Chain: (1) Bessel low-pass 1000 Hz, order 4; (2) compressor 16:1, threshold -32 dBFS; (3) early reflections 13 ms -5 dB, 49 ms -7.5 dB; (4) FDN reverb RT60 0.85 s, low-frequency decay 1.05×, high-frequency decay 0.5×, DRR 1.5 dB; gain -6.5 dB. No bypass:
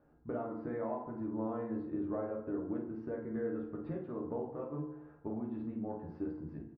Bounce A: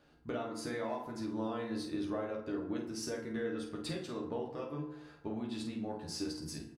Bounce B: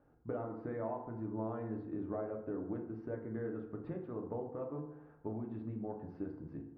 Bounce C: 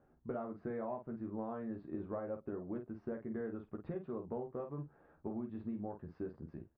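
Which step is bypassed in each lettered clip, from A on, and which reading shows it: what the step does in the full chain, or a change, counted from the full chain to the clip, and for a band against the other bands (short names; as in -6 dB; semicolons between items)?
1, 2 kHz band +9.0 dB; 3, echo-to-direct 2.0 dB to -1.5 dB; 4, loudness change -3.5 LU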